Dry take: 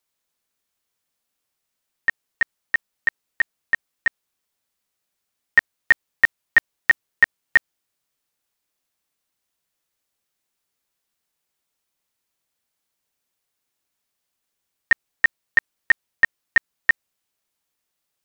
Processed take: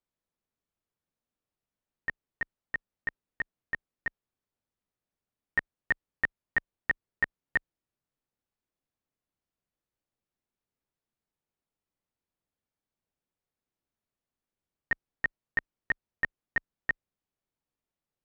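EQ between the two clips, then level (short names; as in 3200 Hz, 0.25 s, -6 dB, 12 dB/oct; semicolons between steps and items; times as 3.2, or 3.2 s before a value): tilt -4 dB/oct; low shelf 83 Hz -11.5 dB; -9.0 dB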